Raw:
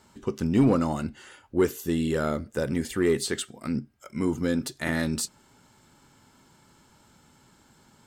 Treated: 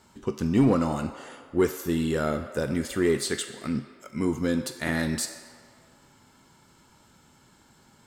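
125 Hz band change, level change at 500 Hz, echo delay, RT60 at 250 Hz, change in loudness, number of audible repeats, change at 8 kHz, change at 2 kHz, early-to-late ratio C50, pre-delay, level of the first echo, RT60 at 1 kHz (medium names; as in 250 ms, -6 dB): 0.0 dB, 0.0 dB, no echo, 2.6 s, 0.0 dB, no echo, +0.5 dB, +1.0 dB, 8.5 dB, 3 ms, no echo, 2.0 s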